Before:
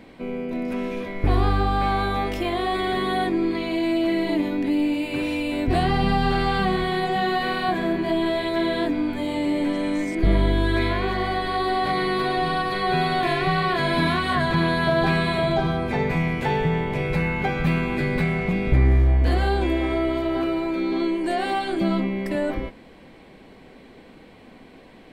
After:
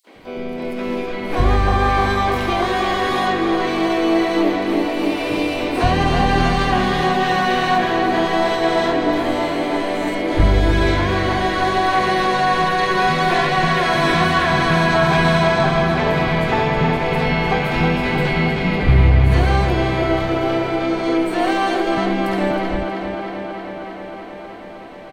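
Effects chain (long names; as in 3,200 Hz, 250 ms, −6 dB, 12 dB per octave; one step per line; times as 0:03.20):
three-band delay without the direct sound highs, mids, lows 70/160 ms, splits 270/5,800 Hz
pitch-shifted copies added +5 semitones −14 dB, +7 semitones −12 dB, +12 semitones −15 dB
tape delay 315 ms, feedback 83%, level −5 dB, low-pass 5,900 Hz
level +4 dB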